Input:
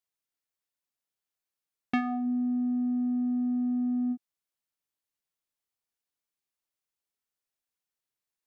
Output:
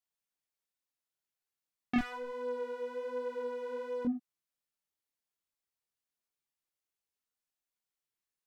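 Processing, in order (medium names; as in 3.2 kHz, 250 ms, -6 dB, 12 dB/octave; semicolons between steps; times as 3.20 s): 1.98–4.05 s: comb filter that takes the minimum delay 2.1 ms; chorus voices 2, 1.2 Hz, delay 23 ms, depth 3 ms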